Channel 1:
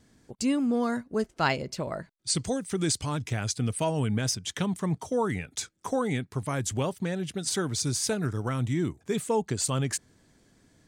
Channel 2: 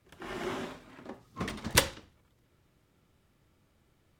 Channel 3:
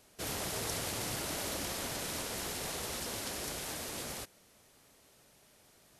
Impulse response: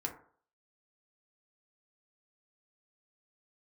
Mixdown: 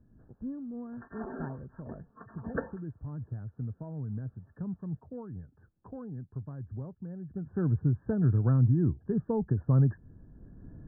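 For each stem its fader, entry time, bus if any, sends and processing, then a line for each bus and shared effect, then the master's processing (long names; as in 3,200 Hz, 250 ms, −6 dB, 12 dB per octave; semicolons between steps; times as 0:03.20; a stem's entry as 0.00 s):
0:07.19 −20.5 dB → 0:07.68 −7.5 dB, 0.00 s, no send, no echo send, spectral tilt −3 dB per octave; multiband upward and downward compressor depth 40%
−2.0 dB, 0.80 s, no send, no echo send, comb filter 4.4 ms, depth 69%; through-zero flanger with one copy inverted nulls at 1.7 Hz, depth 1.1 ms
−17.0 dB, 0.00 s, no send, echo send −12 dB, downward compressor 12 to 1, threshold −44 dBFS, peak gain reduction 12 dB; automatic ducking −15 dB, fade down 1.25 s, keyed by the first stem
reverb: not used
echo: repeating echo 231 ms, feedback 59%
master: linear-phase brick-wall low-pass 1,800 Hz; low-shelf EQ 290 Hz +10 dB; amplitude modulation by smooth noise, depth 55%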